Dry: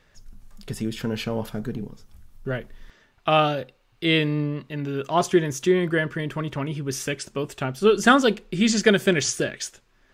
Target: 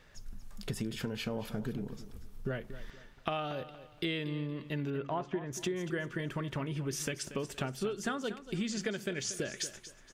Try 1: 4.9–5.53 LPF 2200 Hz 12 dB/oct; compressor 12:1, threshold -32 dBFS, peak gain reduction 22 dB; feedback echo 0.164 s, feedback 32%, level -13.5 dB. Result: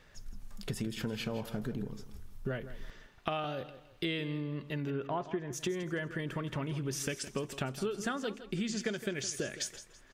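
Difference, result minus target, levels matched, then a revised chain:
echo 70 ms early
4.9–5.53 LPF 2200 Hz 12 dB/oct; compressor 12:1, threshold -32 dBFS, peak gain reduction 22 dB; feedback echo 0.234 s, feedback 32%, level -13.5 dB

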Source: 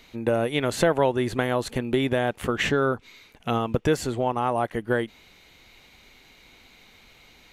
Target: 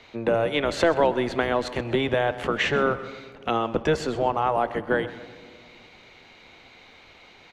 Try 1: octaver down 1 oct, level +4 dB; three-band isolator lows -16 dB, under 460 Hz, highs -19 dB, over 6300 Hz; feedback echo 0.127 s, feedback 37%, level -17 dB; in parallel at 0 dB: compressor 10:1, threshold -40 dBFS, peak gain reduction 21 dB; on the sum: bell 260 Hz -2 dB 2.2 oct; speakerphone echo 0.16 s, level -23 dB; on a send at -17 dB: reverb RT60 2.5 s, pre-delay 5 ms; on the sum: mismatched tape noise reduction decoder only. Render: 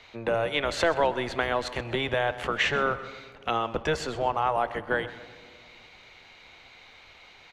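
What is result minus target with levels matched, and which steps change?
250 Hz band -4.5 dB
change: bell 260 Hz +6 dB 2.2 oct

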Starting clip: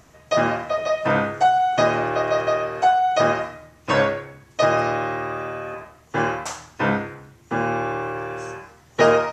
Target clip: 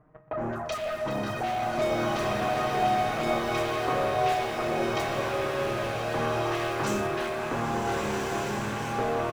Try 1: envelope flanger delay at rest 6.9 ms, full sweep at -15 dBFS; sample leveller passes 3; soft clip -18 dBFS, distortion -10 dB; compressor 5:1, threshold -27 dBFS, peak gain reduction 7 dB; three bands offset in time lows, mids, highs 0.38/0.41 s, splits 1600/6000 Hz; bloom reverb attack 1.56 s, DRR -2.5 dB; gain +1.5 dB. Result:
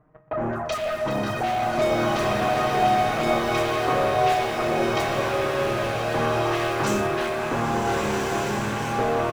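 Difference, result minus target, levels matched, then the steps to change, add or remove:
compressor: peak gain reduction -5 dB
change: compressor 5:1, threshold -33 dBFS, peak gain reduction 12 dB

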